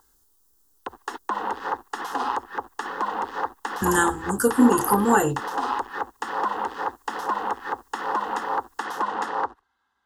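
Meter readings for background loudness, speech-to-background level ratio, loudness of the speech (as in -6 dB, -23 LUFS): -29.0 LUFS, 7.5 dB, -21.5 LUFS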